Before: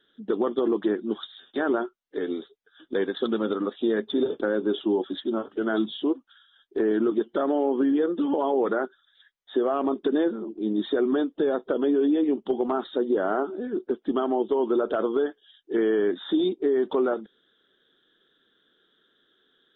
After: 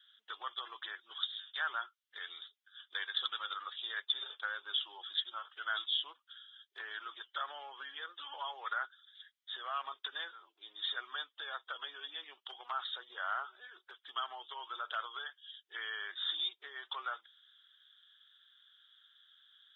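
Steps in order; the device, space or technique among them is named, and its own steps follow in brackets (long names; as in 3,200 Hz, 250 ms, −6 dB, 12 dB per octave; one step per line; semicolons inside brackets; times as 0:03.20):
headphones lying on a table (high-pass filter 1,200 Hz 24 dB per octave; parametric band 3,300 Hz +7.5 dB 0.39 octaves)
level −2 dB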